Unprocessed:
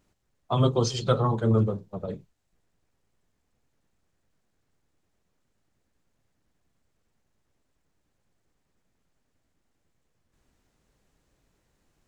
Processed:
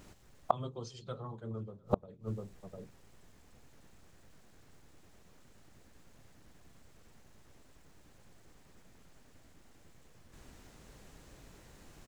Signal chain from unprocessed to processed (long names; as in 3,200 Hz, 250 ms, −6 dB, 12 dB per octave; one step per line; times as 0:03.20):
slap from a distant wall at 120 metres, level −29 dB
gate with flip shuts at −26 dBFS, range −34 dB
level +14.5 dB